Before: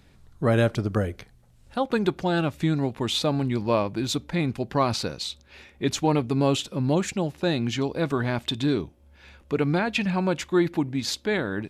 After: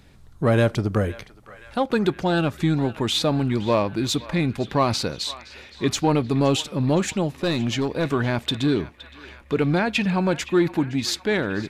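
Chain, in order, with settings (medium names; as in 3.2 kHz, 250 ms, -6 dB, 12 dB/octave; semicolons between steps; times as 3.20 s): in parallel at -5 dB: saturation -21.5 dBFS, distortion -11 dB; on the sum: band-passed feedback delay 517 ms, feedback 76%, band-pass 1.9 kHz, level -15 dB; 7.33–8.07 s: hard clipper -17.5 dBFS, distortion -26 dB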